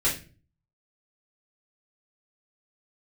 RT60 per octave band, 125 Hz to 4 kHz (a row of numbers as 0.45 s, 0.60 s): 0.70 s, 0.55 s, 0.45 s, 0.30 s, 0.35 s, 0.30 s